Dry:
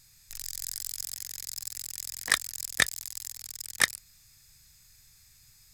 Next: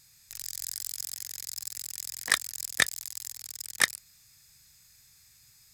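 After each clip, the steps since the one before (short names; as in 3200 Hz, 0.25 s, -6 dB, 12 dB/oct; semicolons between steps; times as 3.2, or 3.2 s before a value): HPF 120 Hz 6 dB/oct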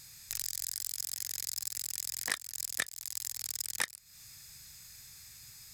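compressor 8:1, threshold -38 dBFS, peak gain reduction 21.5 dB; gain +7 dB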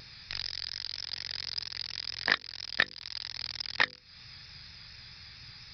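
vibrato 4.3 Hz 48 cents; downsampling 11025 Hz; notches 50/100/150/200/250/300/350/400/450/500 Hz; gain +9 dB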